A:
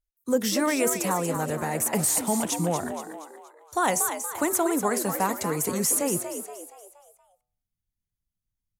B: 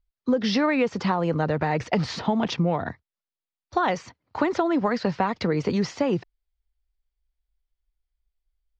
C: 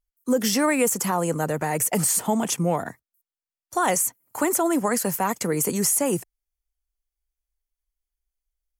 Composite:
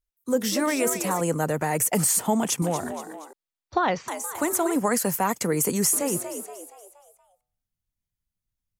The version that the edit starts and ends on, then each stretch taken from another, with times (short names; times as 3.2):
A
1.21–2.62 from C
3.33–4.08 from B
4.76–5.93 from C